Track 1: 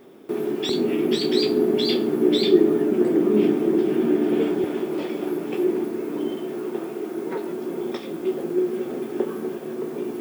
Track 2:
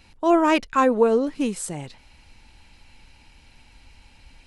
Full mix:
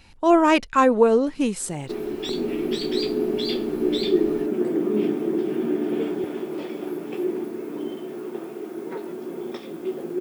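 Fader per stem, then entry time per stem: −4.0, +1.5 decibels; 1.60, 0.00 seconds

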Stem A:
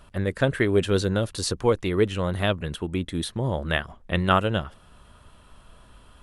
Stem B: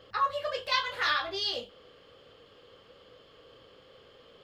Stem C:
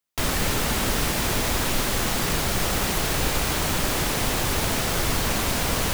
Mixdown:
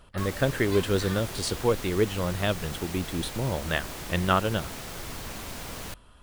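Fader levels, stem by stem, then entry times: −3.0, −13.0, −14.0 decibels; 0.00, 0.00, 0.00 seconds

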